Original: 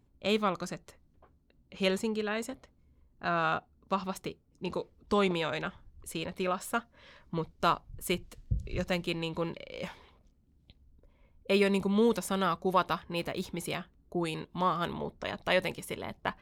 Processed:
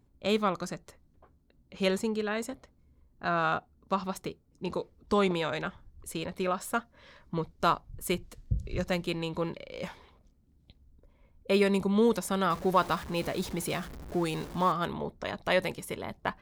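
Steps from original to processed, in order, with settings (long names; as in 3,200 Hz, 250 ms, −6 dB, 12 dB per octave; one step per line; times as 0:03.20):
0:12.50–0:14.72: converter with a step at zero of −39.5 dBFS
parametric band 2,800 Hz −3.5 dB 0.62 octaves
level +1.5 dB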